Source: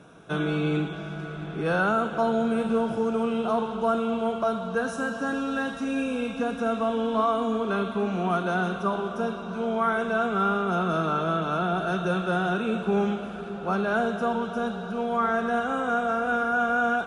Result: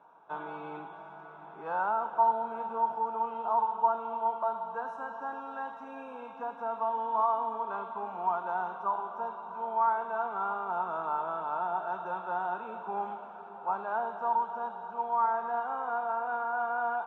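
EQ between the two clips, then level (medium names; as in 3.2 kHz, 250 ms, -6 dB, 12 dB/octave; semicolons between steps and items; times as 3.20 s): band-pass filter 910 Hz, Q 10; +8.5 dB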